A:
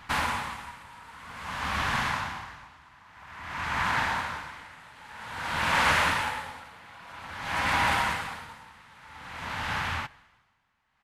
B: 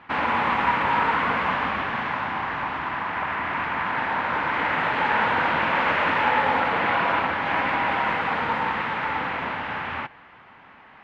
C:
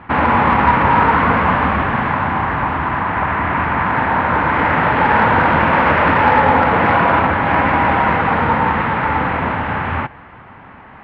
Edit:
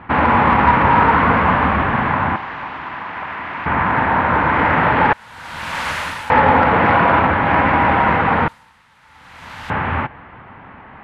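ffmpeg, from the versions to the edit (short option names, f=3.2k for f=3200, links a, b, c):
-filter_complex "[0:a]asplit=2[a][b];[2:a]asplit=4[c][d][e][f];[c]atrim=end=2.362[g];[1:a]atrim=start=2.358:end=3.662[h];[d]atrim=start=3.658:end=5.132[i];[a]atrim=start=5.128:end=6.302[j];[e]atrim=start=6.298:end=8.482[k];[b]atrim=start=8.478:end=9.702[l];[f]atrim=start=9.698[m];[g][h]acrossfade=d=0.004:c1=hsin:c2=hsin[n];[n][i]acrossfade=d=0.004:c1=hsin:c2=hsin[o];[o][j]acrossfade=d=0.004:c1=hsin:c2=hsin[p];[p][k]acrossfade=d=0.004:c1=hsin:c2=hsin[q];[q][l]acrossfade=d=0.004:c1=hsin:c2=hsin[r];[r][m]acrossfade=d=0.004:c1=hsin:c2=hsin"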